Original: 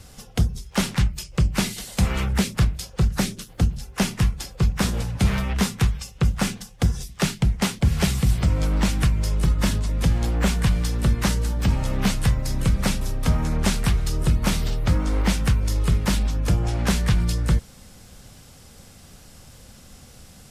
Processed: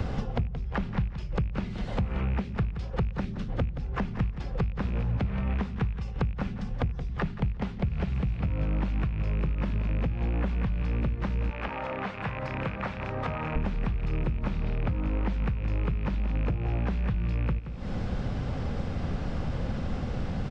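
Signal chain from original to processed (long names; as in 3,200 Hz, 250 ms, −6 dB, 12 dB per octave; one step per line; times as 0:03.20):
loose part that buzzes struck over −22 dBFS, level −19 dBFS
0:11.50–0:13.56: high-pass filter 640 Hz 12 dB per octave
downward compressor 6 to 1, threshold −34 dBFS, peak gain reduction 18.5 dB
head-to-tape spacing loss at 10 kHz 44 dB
repeating echo 174 ms, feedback 19%, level −13 dB
multiband upward and downward compressor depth 100%
level +7.5 dB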